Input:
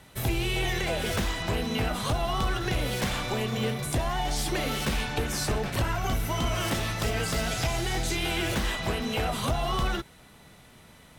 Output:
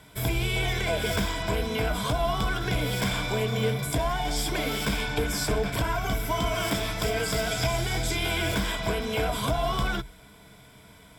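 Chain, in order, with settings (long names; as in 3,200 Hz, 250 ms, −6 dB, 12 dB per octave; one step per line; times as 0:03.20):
EQ curve with evenly spaced ripples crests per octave 1.7, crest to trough 10 dB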